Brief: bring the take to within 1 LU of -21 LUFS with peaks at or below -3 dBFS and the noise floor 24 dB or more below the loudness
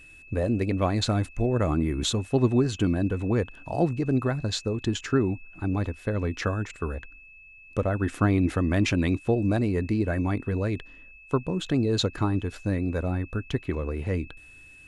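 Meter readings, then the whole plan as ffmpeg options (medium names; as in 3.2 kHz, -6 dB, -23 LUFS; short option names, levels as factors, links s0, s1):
steady tone 2.6 kHz; tone level -48 dBFS; loudness -27.0 LUFS; peak level -10.5 dBFS; loudness target -21.0 LUFS
-> -af "bandreject=f=2600:w=30"
-af "volume=2"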